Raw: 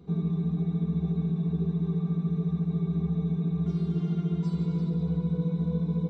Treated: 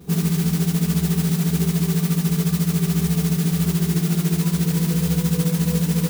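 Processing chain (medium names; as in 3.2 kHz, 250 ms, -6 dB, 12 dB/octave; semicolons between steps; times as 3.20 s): modulation noise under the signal 12 dB; trim +7.5 dB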